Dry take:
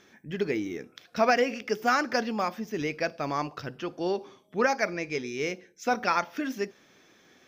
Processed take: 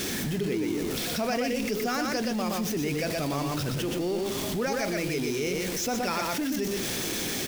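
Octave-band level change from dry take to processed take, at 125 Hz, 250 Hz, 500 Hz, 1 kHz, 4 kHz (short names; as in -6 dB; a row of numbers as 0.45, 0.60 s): +8.5, +4.5, 0.0, -4.5, +6.5 dB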